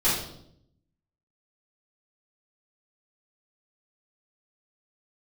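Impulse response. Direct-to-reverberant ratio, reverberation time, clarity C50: -11.0 dB, 0.70 s, 2.0 dB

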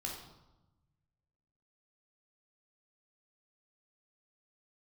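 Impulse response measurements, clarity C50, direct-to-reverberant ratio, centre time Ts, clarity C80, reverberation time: 3.5 dB, -1.5 dB, 41 ms, 6.5 dB, 1.0 s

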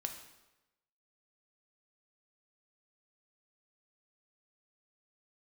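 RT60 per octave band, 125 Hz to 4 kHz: 1.0 s, 0.95 s, 1.0 s, 1.0 s, 0.95 s, 0.85 s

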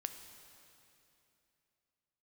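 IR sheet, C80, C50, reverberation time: 9.0 dB, 8.0 dB, 2.9 s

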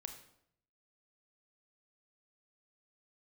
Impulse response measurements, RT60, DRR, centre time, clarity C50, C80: 0.70 s, 5.5 dB, 17 ms, 8.5 dB, 11.0 dB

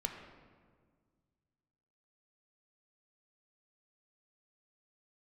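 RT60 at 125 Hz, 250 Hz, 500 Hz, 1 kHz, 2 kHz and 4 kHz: 2.6 s, 2.2 s, 1.9 s, 1.6 s, 1.3 s, 1.0 s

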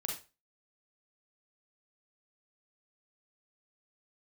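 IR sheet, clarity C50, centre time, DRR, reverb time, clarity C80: 4.5 dB, 32 ms, -0.5 dB, 0.30 s, 12.0 dB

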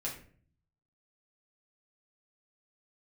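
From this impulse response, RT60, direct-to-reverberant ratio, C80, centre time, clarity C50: 0.50 s, -4.5 dB, 12.0 dB, 26 ms, 7.5 dB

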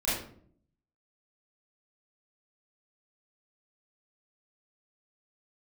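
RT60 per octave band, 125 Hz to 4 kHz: 0.90 s, 0.85 s, 0.65 s, 0.50 s, 0.40 s, 0.35 s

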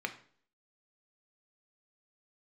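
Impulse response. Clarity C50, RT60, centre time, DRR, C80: 13.0 dB, 0.50 s, 8 ms, 5.0 dB, 17.0 dB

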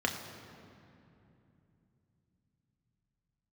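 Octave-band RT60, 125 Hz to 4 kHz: 5.6 s, 4.5 s, 3.1 s, 2.6 s, 2.4 s, 1.7 s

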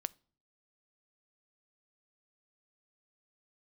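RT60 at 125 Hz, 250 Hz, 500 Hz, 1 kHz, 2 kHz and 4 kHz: 0.70 s, 0.60 s, 0.50 s, 0.45 s, 0.35 s, 0.35 s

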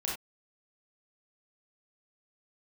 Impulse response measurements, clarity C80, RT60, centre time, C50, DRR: 9.0 dB, no single decay rate, 41 ms, 2.0 dB, -4.0 dB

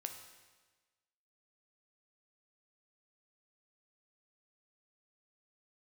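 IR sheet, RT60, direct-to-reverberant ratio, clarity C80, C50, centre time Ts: 1.3 s, 5.0 dB, 9.0 dB, 7.5 dB, 26 ms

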